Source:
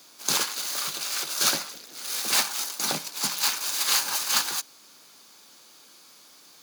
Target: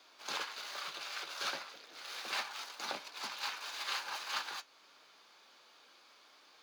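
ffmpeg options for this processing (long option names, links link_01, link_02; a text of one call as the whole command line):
ffmpeg -i in.wav -filter_complex "[0:a]acompressor=threshold=-35dB:ratio=1.5,flanger=delay=2.7:depth=5:regen=-70:speed=0.32:shape=triangular,acrossover=split=400 4100:gain=0.2 1 0.0891[link_01][link_02][link_03];[link_01][link_02][link_03]amix=inputs=3:normalize=0,volume=1dB" out.wav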